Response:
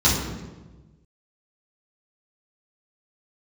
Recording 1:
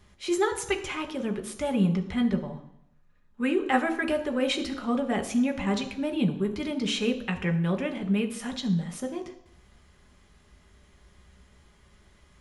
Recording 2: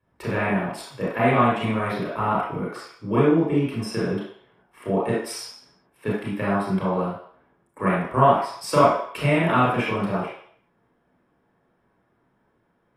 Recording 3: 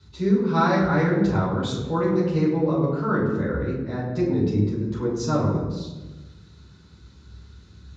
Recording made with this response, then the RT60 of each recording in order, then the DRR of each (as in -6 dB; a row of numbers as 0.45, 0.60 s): 3; 0.75, 0.60, 1.2 s; 4.0, -7.5, -9.0 dB